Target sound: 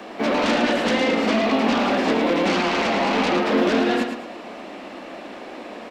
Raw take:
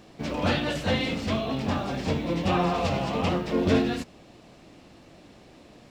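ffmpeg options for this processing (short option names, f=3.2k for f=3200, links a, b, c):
-filter_complex "[0:a]acrossover=split=240|1700[a][b][c];[a]acompressor=threshold=-39dB:ratio=4[d];[b]acompressor=threshold=-29dB:ratio=4[e];[c]acompressor=threshold=-43dB:ratio=4[f];[d][e][f]amix=inputs=3:normalize=0,acrossover=split=260|440|2900[g][h][i][j];[i]aeval=exprs='0.0473*sin(PI/2*2.82*val(0)/0.0473)':c=same[k];[g][h][k][j]amix=inputs=4:normalize=0,lowshelf=f=170:t=q:w=3:g=-9.5,aecho=1:1:110|220|330|440:0.447|0.147|0.0486|0.0161,volume=5.5dB"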